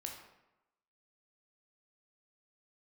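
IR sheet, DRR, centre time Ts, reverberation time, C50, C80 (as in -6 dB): 1.0 dB, 35 ms, 0.95 s, 4.5 dB, 7.5 dB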